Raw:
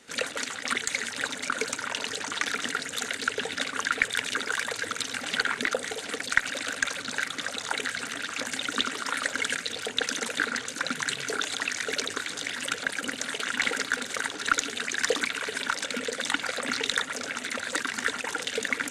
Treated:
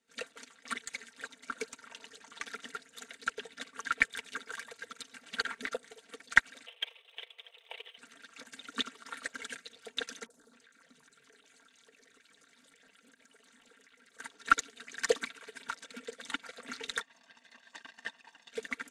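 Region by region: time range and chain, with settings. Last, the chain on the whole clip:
6.66–7.98 s: comb filter that takes the minimum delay 0.34 ms + elliptic high-pass 450 Hz, stop band 50 dB + resonant high shelf 4.3 kHz -10.5 dB, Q 3
10.26–14.20 s: three bands offset in time lows, highs, mids 40/270 ms, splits 1.1/4.7 kHz + compression 5:1, threshold -33 dBFS
17.01–18.52 s: comb filter that takes the minimum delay 1.1 ms + band-pass 290–5400 Hz
whole clip: comb 4.4 ms, depth 57%; upward expansion 2.5:1, over -35 dBFS

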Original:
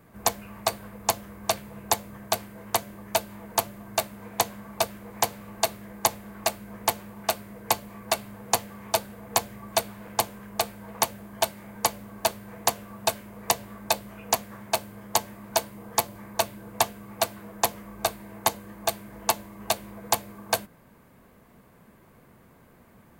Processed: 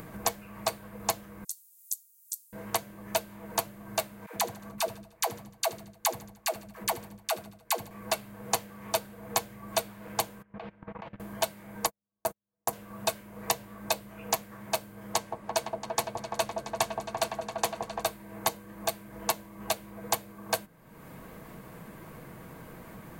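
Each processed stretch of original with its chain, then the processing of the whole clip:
1.44–2.53 s: inverse Chebyshev high-pass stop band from 1.2 kHz, stop band 80 dB + frequency shift -140 Hz
4.26–7.91 s: gate with hold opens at -32 dBFS, closes at -36 dBFS + phase dispersion lows, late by 95 ms, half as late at 410 Hz + feedback delay 75 ms, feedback 45%, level -18 dB
10.42–11.20 s: low-pass 2.8 kHz 24 dB/octave + level held to a coarse grid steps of 21 dB + loudspeaker Doppler distortion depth 0.15 ms
11.86–12.73 s: gate -32 dBFS, range -46 dB + peaking EQ 3.4 kHz -14 dB 1.8 oct
15.13–18.03 s: peaking EQ 14 kHz -14.5 dB 0.29 oct + delay with an opening low-pass 170 ms, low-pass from 750 Hz, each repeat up 1 oct, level -3 dB
whole clip: comb 6.3 ms, depth 33%; upward compressor, threshold -28 dBFS; trim -5 dB

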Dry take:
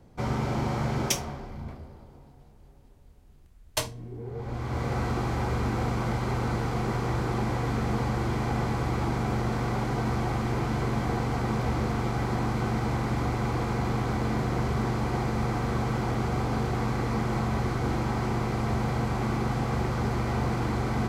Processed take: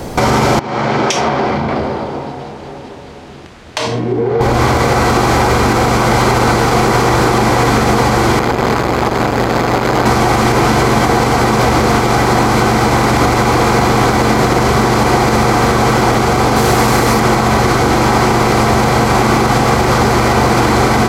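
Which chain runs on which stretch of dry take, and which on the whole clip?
0.59–4.41 s: band-pass 130–3800 Hz + compression 8:1, threshold -42 dBFS
8.39–10.06 s: peaking EQ 9.2 kHz -6.5 dB 0.65 oct + band-stop 5.7 kHz, Q 11 + transformer saturation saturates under 550 Hz
16.56–17.20 s: treble shelf 8 kHz +9 dB + hard clipper -21.5 dBFS
whole clip: tone controls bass -9 dB, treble +4 dB; compression, threshold -43 dBFS; loudness maximiser +36 dB; trim -1 dB

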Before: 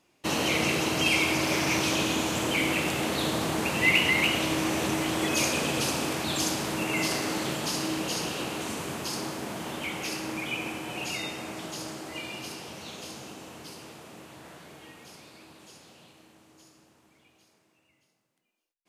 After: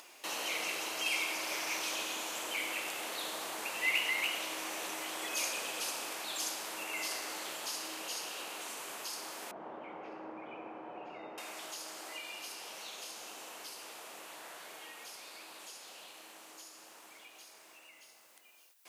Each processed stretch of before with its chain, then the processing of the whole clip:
9.51–11.38 s: low-pass 1 kHz + tilt EQ -2 dB/octave
whole clip: high-pass 620 Hz 12 dB/octave; treble shelf 9.8 kHz +7.5 dB; upward compressor, threshold -29 dBFS; trim -9 dB

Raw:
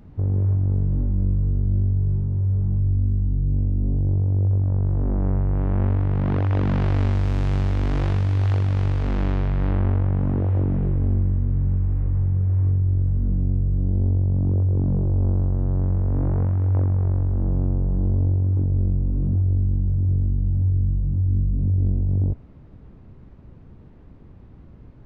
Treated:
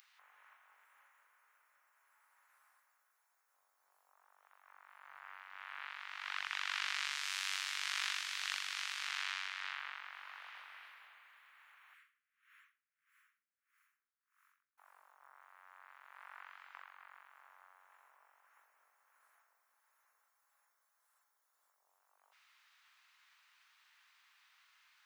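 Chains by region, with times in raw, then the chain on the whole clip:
11.94–14.78 s: inverse Chebyshev band-stop 310–640 Hz, stop band 60 dB + logarithmic tremolo 1.6 Hz, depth 26 dB
whole clip: Bessel high-pass 2 kHz, order 6; tilt EQ +3 dB/octave; trim +2.5 dB

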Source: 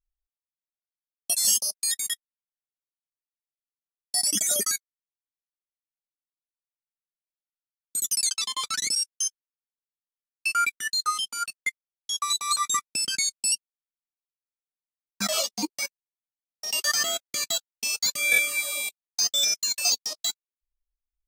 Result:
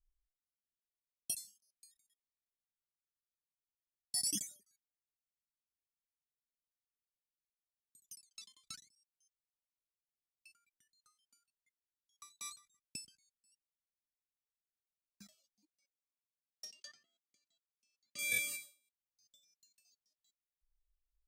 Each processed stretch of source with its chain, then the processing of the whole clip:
15.68–18.19 s: low-pass that closes with the level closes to 2.8 kHz, closed at -20.5 dBFS + high-pass 230 Hz
whole clip: amplifier tone stack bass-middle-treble 10-0-1; endings held to a fixed fall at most 160 dB/s; trim +10 dB

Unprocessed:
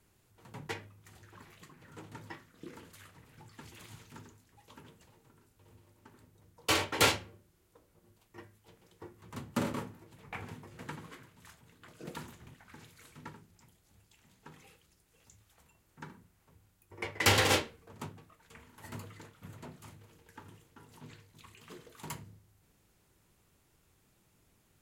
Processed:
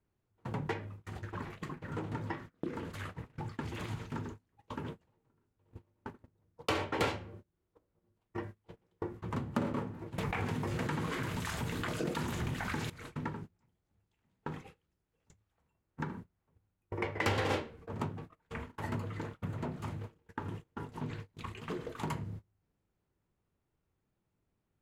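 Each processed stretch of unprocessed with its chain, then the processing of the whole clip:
10.18–12.90 s: treble shelf 2.8 kHz +11.5 dB + level flattener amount 70%
whole clip: gate -56 dBFS, range -28 dB; low-pass 1.2 kHz 6 dB/octave; compression 3:1, threshold -54 dBFS; trim +17.5 dB

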